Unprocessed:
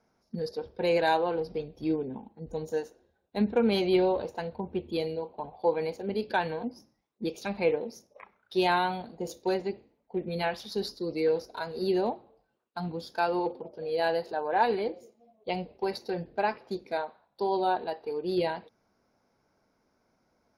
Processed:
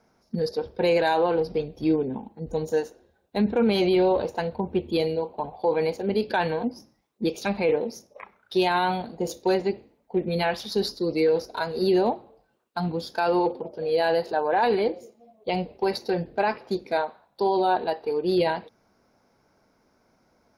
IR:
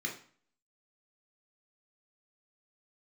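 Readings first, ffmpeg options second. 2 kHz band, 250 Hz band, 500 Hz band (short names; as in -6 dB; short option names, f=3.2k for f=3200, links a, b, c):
+4.0 dB, +5.5 dB, +5.5 dB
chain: -af "alimiter=limit=-21dB:level=0:latency=1:release=11,volume=7dB"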